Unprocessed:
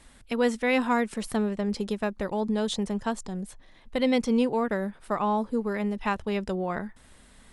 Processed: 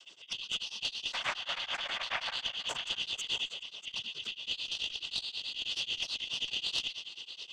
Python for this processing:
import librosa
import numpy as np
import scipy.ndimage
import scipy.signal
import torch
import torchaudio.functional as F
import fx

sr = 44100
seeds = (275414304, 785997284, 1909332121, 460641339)

p1 = fx.band_shuffle(x, sr, order='3412')
p2 = fx.spec_paint(p1, sr, seeds[0], shape='noise', start_s=1.12, length_s=1.24, low_hz=610.0, high_hz=2700.0, level_db=-33.0)
p3 = p2 + fx.echo_feedback(p2, sr, ms=209, feedback_pct=58, wet_db=-15, dry=0)
p4 = fx.noise_vocoder(p3, sr, seeds[1], bands=16)
p5 = fx.over_compress(p4, sr, threshold_db=-32.0, ratio=-1.0)
p6 = p5 + 10.0 ** (-12.5 / 20.0) * np.pad(p5, (int(641 * sr / 1000.0), 0))[:len(p5)]
p7 = fx.tube_stage(p6, sr, drive_db=16.0, bias=0.55)
y = p7 * np.abs(np.cos(np.pi * 9.3 * np.arange(len(p7)) / sr))